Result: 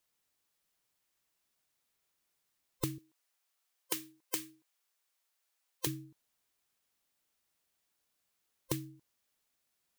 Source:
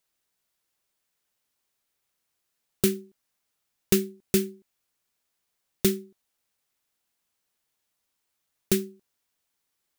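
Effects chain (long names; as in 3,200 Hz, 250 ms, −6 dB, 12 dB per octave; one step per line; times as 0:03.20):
frequency inversion band by band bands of 500 Hz
0:02.98–0:05.87: high-pass filter 580 Hz 12 dB per octave
downward compressor 16 to 1, threshold −30 dBFS, peak gain reduction 14 dB
level −1.5 dB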